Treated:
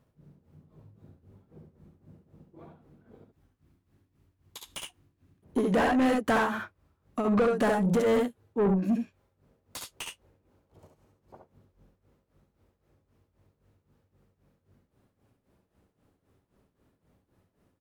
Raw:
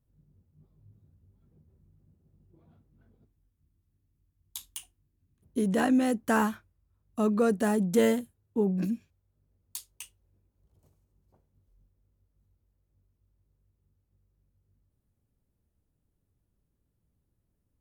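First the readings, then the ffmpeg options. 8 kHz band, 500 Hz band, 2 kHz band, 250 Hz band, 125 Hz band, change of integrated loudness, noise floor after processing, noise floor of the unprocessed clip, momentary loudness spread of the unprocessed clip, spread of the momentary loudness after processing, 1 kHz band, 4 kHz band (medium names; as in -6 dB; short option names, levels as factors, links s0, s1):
-3.0 dB, +2.0 dB, +3.0 dB, -0.5 dB, +2.0 dB, 0.0 dB, -77 dBFS, -78 dBFS, 19 LU, 18 LU, +3.5 dB, +3.5 dB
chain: -filter_complex "[0:a]tremolo=f=3.8:d=0.9,aecho=1:1:58|69:0.251|0.531,asplit=2[s0][s1];[s1]acompressor=threshold=0.0141:ratio=6,volume=1.12[s2];[s0][s2]amix=inputs=2:normalize=0,asplit=2[s3][s4];[s4]highpass=f=720:p=1,volume=20,asoftclip=type=tanh:threshold=0.237[s5];[s3][s5]amix=inputs=2:normalize=0,lowpass=f=1200:p=1,volume=0.501,volume=0.708"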